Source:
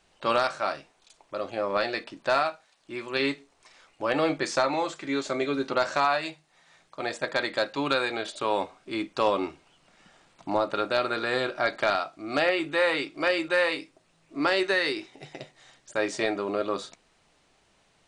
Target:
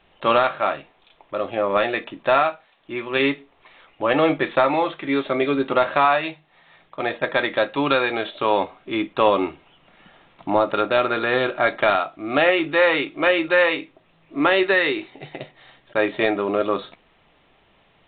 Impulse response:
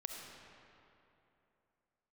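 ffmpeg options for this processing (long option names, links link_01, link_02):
-af "bandreject=frequency=1500:width=18,volume=7dB" -ar 8000 -c:a pcm_mulaw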